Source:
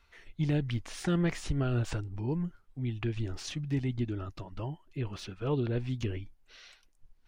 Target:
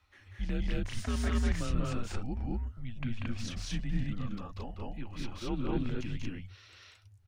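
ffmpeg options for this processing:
-af "afreqshift=-110,aecho=1:1:189.5|224.5:0.794|1,volume=0.631"

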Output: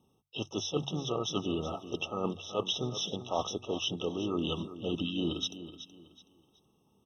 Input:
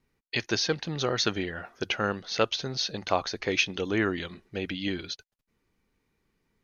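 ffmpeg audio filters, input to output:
-filter_complex "[0:a]asplit=2[s0][s1];[s1]asetrate=52444,aresample=44100,atempo=0.840896,volume=0.316[s2];[s0][s2]amix=inputs=2:normalize=0,highpass=86,equalizer=f=960:t=o:w=0.59:g=3,bandreject=f=1100:w=7.7,areverse,acompressor=threshold=0.02:ratio=16,areverse,bandreject=f=50:t=h:w=6,bandreject=f=100:t=h:w=6,bandreject=f=150:t=h:w=6,asetrate=41454,aresample=44100,aecho=1:1:374|748|1122:0.224|0.0672|0.0201,afftfilt=real='re*eq(mod(floor(b*sr/1024/1300),2),0)':imag='im*eq(mod(floor(b*sr/1024/1300),2),0)':win_size=1024:overlap=0.75,volume=2.11"

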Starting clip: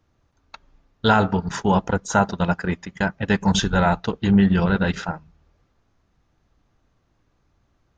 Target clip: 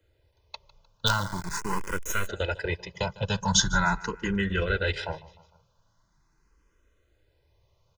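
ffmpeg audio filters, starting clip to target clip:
-filter_complex "[0:a]acrossover=split=130|1300[s0][s1][s2];[s1]alimiter=limit=0.119:level=0:latency=1:release=143[s3];[s0][s3][s2]amix=inputs=3:normalize=0,bass=f=250:g=-2,treble=f=4000:g=5,asplit=2[s4][s5];[s5]aecho=0:1:152|304|456:0.1|0.045|0.0202[s6];[s4][s6]amix=inputs=2:normalize=0,asplit=3[s7][s8][s9];[s7]afade=t=out:st=1.06:d=0.02[s10];[s8]acrusher=bits=3:dc=4:mix=0:aa=0.000001,afade=t=in:st=1.06:d=0.02,afade=t=out:st=2.26:d=0.02[s11];[s9]afade=t=in:st=2.26:d=0.02[s12];[s10][s11][s12]amix=inputs=3:normalize=0,aecho=1:1:2:0.6,asplit=2[s13][s14];[s14]afreqshift=0.42[s15];[s13][s15]amix=inputs=2:normalize=1"

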